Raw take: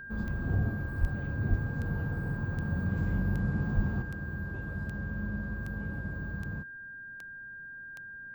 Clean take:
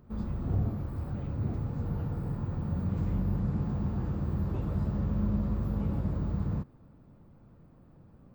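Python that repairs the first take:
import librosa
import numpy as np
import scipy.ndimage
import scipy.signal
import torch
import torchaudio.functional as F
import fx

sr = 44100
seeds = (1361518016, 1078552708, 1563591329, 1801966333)

y = fx.fix_declick_ar(x, sr, threshold=10.0)
y = fx.notch(y, sr, hz=1600.0, q=30.0)
y = fx.highpass(y, sr, hz=140.0, slope=24, at=(1.0, 1.12), fade=0.02)
y = fx.highpass(y, sr, hz=140.0, slope=24, at=(1.49, 1.61), fade=0.02)
y = fx.highpass(y, sr, hz=140.0, slope=24, at=(3.75, 3.87), fade=0.02)
y = fx.fix_level(y, sr, at_s=4.02, step_db=6.5)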